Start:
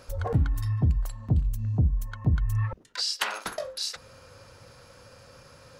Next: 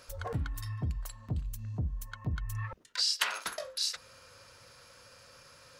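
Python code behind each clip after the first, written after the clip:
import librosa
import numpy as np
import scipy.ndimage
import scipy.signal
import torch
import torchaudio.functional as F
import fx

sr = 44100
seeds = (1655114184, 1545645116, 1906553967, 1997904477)

y = fx.tilt_shelf(x, sr, db=-5.5, hz=790.0)
y = fx.notch(y, sr, hz=800.0, q=12.0)
y = y * librosa.db_to_amplitude(-5.5)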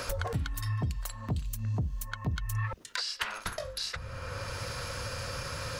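y = fx.band_squash(x, sr, depth_pct=100)
y = y * librosa.db_to_amplitude(3.0)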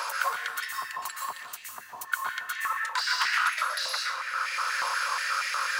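y = fx.leveller(x, sr, passes=2)
y = fx.rev_plate(y, sr, seeds[0], rt60_s=0.81, hf_ratio=0.85, predelay_ms=105, drr_db=-1.5)
y = fx.filter_held_highpass(y, sr, hz=8.3, low_hz=970.0, high_hz=2000.0)
y = y * librosa.db_to_amplitude(-5.0)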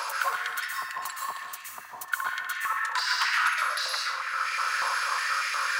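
y = fx.echo_banded(x, sr, ms=66, feedback_pct=75, hz=1600.0, wet_db=-7.5)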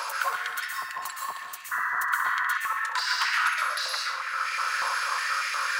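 y = fx.spec_paint(x, sr, seeds[1], shape='noise', start_s=1.71, length_s=0.87, low_hz=960.0, high_hz=2000.0, level_db=-28.0)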